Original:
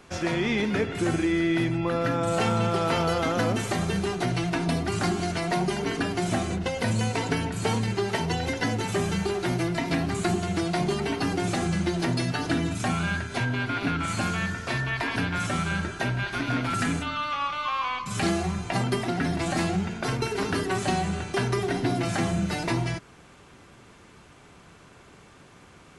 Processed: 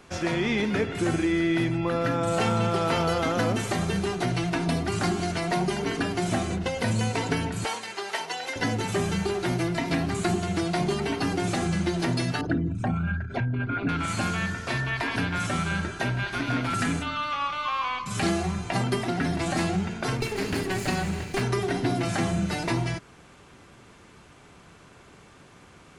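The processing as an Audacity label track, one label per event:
7.650000	8.560000	HPF 680 Hz
12.410000	13.890000	formant sharpening exponent 2
20.200000	21.420000	minimum comb delay 0.42 ms

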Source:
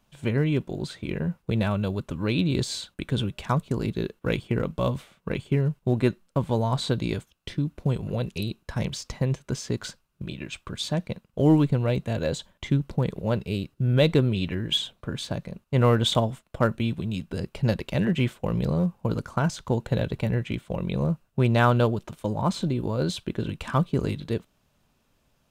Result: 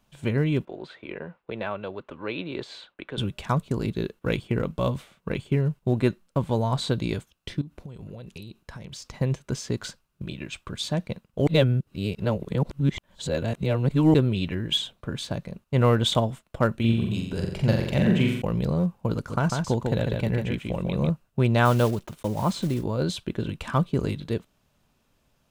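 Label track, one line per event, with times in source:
0.650000	3.180000	three-band isolator lows -18 dB, under 340 Hz, highs -23 dB, over 3300 Hz
7.610000	9.140000	compressor 16:1, threshold -35 dBFS
11.470000	14.140000	reverse
16.760000	18.420000	flutter echo walls apart 7.5 m, dies away in 0.75 s
19.150000	21.100000	echo 0.147 s -4 dB
21.650000	22.840000	block floating point 5-bit

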